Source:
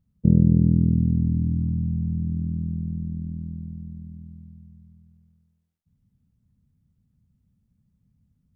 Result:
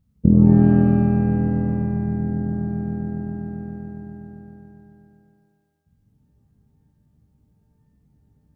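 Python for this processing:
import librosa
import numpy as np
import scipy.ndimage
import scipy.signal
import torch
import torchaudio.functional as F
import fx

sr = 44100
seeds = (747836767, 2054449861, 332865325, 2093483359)

y = fx.dynamic_eq(x, sr, hz=130.0, q=3.8, threshold_db=-32.0, ratio=4.0, max_db=-5)
y = fx.rev_shimmer(y, sr, seeds[0], rt60_s=1.0, semitones=12, shimmer_db=-8, drr_db=3.5)
y = F.gain(torch.from_numpy(y), 4.0).numpy()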